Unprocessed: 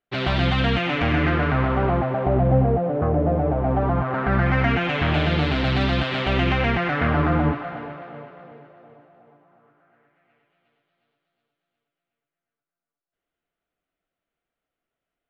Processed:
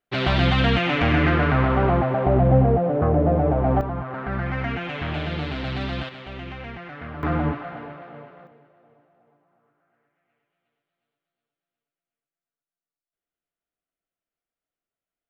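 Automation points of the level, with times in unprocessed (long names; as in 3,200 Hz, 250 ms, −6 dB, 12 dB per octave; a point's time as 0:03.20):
+1.5 dB
from 0:03.81 −7 dB
from 0:06.09 −15 dB
from 0:07.23 −3 dB
from 0:08.47 −9 dB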